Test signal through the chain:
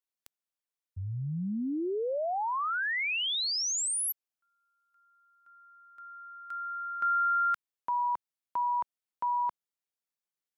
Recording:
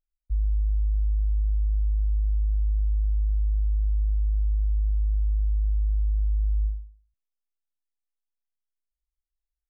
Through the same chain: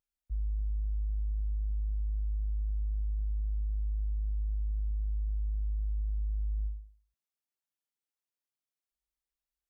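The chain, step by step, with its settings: HPF 130 Hz 6 dB/oct

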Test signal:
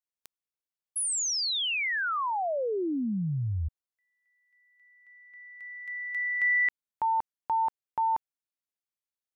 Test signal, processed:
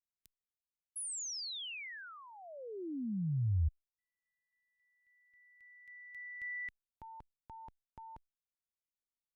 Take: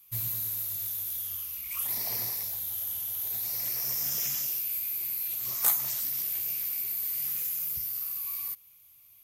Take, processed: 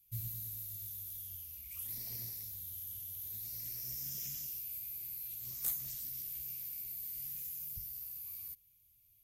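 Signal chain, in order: passive tone stack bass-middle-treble 10-0-1; gain +9 dB

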